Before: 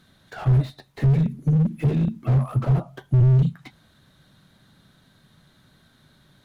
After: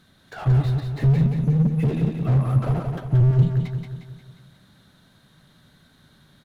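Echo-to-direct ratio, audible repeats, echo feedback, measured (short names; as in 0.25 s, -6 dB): -4.0 dB, 5, 50%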